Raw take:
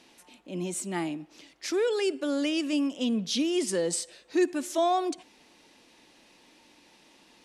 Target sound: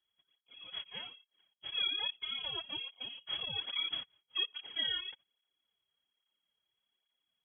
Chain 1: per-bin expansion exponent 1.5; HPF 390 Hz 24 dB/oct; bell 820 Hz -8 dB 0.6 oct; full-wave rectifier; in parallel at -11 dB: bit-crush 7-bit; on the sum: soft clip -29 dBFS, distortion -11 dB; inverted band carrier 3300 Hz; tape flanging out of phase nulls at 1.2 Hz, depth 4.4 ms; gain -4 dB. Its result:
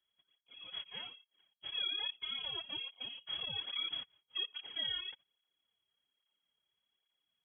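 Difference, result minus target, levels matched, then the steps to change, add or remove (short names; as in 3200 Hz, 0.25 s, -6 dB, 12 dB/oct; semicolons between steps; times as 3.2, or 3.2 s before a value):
soft clip: distortion +8 dB
change: soft clip -22 dBFS, distortion -19 dB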